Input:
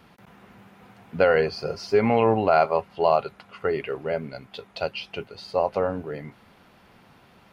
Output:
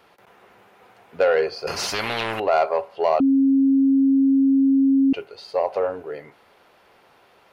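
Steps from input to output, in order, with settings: reverb RT60 0.45 s, pre-delay 23 ms, DRR 18 dB; soft clip -11 dBFS, distortion -18 dB; resonant low shelf 300 Hz -10.5 dB, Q 1.5; 1.67–2.4 spectral compressor 4:1; 3.2–5.13 bleep 271 Hz -13.5 dBFS

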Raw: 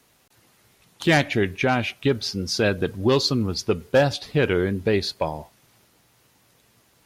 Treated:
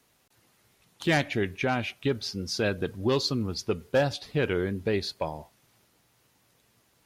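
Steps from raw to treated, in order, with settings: gain -6 dB

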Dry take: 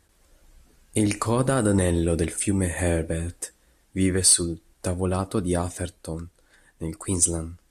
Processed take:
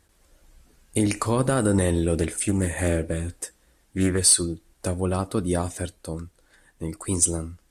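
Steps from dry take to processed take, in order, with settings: 2.14–4.19 Doppler distortion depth 0.2 ms

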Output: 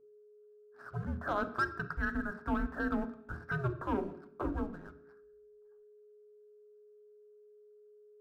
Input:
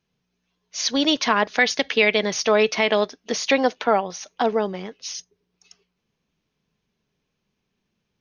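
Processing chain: Chebyshev low-pass 2000 Hz, order 8; differentiator; in parallel at -1.5 dB: limiter -32 dBFS, peak gain reduction 10 dB; on the sum: sample leveller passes 1; frequency shift -390 Hz; whine 420 Hz -59 dBFS; on a send at -7 dB: reverb RT60 0.70 s, pre-delay 3 ms; on the sum: gain -3 dB

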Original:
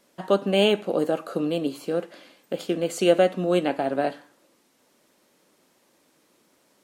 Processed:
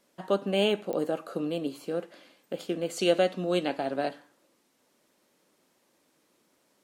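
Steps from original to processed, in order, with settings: 2.96–4.09 dynamic EQ 4400 Hz, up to +8 dB, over -46 dBFS, Q 1.1; pops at 0.93, -16 dBFS; gain -5.5 dB

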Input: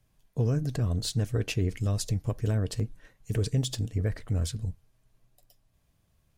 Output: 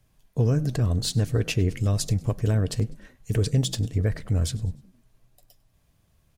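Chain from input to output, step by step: frequency-shifting echo 0.1 s, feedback 41%, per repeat +48 Hz, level -22.5 dB; gain +4.5 dB

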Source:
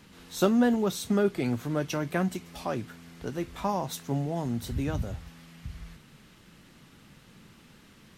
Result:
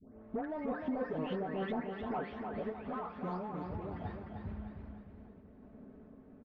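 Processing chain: spectral delay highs late, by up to 0.713 s; low-pass opened by the level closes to 450 Hz, open at -25.5 dBFS; de-hum 138.8 Hz, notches 38; treble ducked by the level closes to 1200 Hz, closed at -28 dBFS; low shelf 250 Hz -9 dB; compressor 4:1, threshold -40 dBFS, peak gain reduction 13.5 dB; soft clip -36.5 dBFS, distortion -17 dB; random-step tremolo; varispeed +27%; tape spacing loss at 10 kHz 31 dB; feedback echo 0.303 s, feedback 45%, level -5.5 dB; warbling echo 0.387 s, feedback 36%, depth 145 cents, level -16 dB; gain +9.5 dB

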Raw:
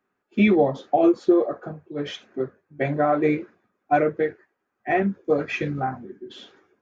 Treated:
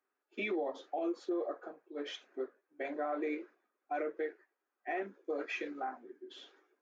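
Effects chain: steep high-pass 280 Hz 36 dB/oct; low shelf 370 Hz -3.5 dB; limiter -19 dBFS, peak gain reduction 10 dB; gain -9 dB

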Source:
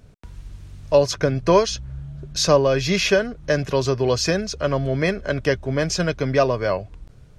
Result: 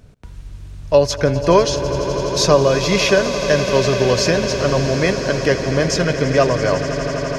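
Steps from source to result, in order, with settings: swelling echo 84 ms, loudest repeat 8, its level -15 dB; gain +3 dB

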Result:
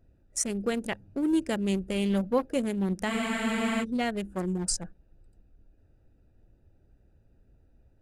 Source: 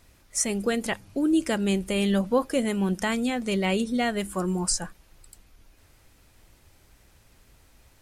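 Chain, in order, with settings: Wiener smoothing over 41 samples; spectral freeze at 3.12, 0.71 s; gain -2.5 dB

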